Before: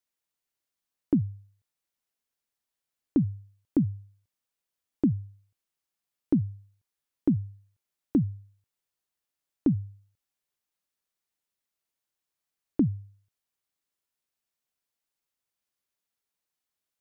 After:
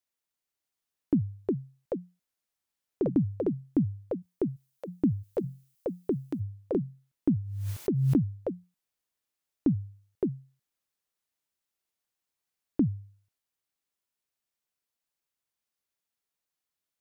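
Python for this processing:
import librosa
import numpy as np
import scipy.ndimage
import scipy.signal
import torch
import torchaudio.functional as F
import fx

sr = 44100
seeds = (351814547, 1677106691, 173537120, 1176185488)

y = fx.tilt_eq(x, sr, slope=4.5, at=(5.22, 6.39), fade=0.02)
y = fx.echo_pitch(y, sr, ms=643, semitones=5, count=2, db_per_echo=-3.0)
y = fx.pre_swell(y, sr, db_per_s=32.0, at=(7.39, 8.16), fade=0.02)
y = y * 10.0 ** (-1.5 / 20.0)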